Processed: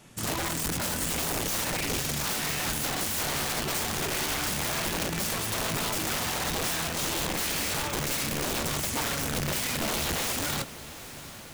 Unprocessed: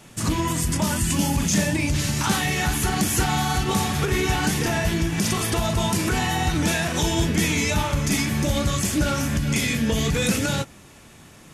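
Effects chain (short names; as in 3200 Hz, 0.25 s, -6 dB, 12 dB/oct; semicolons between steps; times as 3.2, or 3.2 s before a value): wrapped overs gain 18.5 dB; diffused feedback echo 0.821 s, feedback 59%, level -15 dB; gain -6 dB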